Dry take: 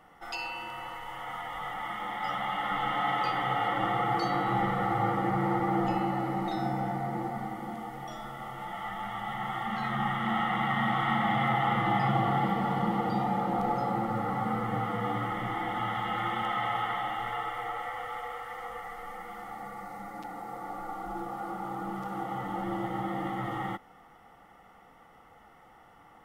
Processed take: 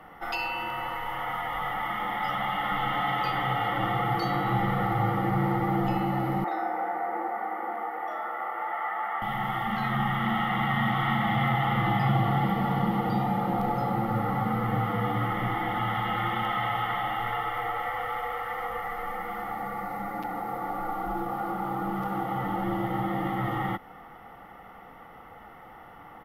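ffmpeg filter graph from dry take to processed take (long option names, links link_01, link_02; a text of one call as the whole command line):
ffmpeg -i in.wav -filter_complex "[0:a]asettb=1/sr,asplit=3[link_01][link_02][link_03];[link_01]atrim=end=6.444[link_04];[link_02]atrim=start=6.44:end=9.22,asetpts=PTS-STARTPTS,afade=type=in:duration=0.004:curve=qsin,afade=type=out:start_time=2.776:duration=0.004:curve=qsin,highpass=frequency=380:width=0.5412,highpass=frequency=380:width=1.3066,highshelf=frequency=2500:width_type=q:width=1.5:gain=-10.5[link_05];[link_03]atrim=start=9.216[link_06];[link_04][link_05]acrossfade=duration=0.004:curve1=hsin:curve2=qsin[link_07];[link_07][link_06]acrossfade=duration=0.004:curve1=qsin:curve2=hsin,equalizer=frequency=13000:width_type=o:width=0.52:gain=13.5,acrossover=split=150|3000[link_08][link_09][link_10];[link_09]acompressor=threshold=-38dB:ratio=2.5[link_11];[link_08][link_11][link_10]amix=inputs=3:normalize=0,firequalizer=gain_entry='entry(1900,0);entry(7700,-17);entry(11000,-10)':delay=0.05:min_phase=1,volume=8.5dB" out.wav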